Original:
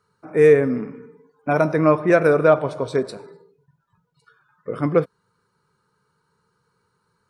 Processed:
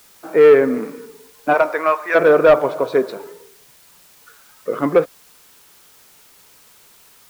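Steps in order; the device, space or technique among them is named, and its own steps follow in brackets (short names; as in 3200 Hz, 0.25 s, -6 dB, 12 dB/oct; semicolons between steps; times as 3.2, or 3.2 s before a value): 1.53–2.14 HPF 510 Hz -> 1300 Hz 12 dB/oct; tape answering machine (BPF 310–3000 Hz; soft clip -10.5 dBFS, distortion -15 dB; wow and flutter; white noise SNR 31 dB); gain +7 dB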